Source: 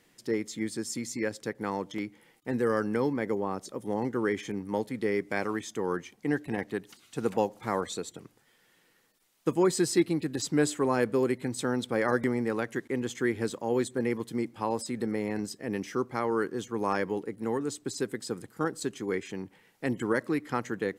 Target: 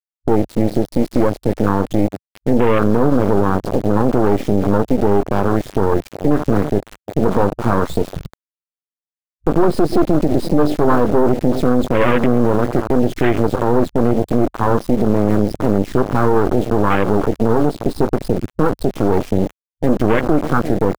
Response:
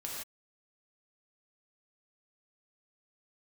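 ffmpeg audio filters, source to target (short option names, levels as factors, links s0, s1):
-filter_complex "[0:a]bass=f=250:g=-8,treble=f=4000:g=-3,asplit=2[s0][s1];[s1]adelay=20,volume=0.237[s2];[s0][s2]amix=inputs=2:normalize=0,aresample=11025,asoftclip=type=hard:threshold=0.0668,aresample=44100,equalizer=f=210:w=0.97:g=5.5,asplit=2[s3][s4];[s4]adelay=342,lowpass=f=3300:p=1,volume=0.112,asplit=2[s5][s6];[s6]adelay=342,lowpass=f=3300:p=1,volume=0.16[s7];[s5][s7]amix=inputs=2:normalize=0[s8];[s3][s8]amix=inputs=2:normalize=0,acrusher=bits=4:dc=4:mix=0:aa=0.000001,afwtdn=0.0126,alimiter=level_in=26.6:limit=0.891:release=50:level=0:latency=1,volume=0.794"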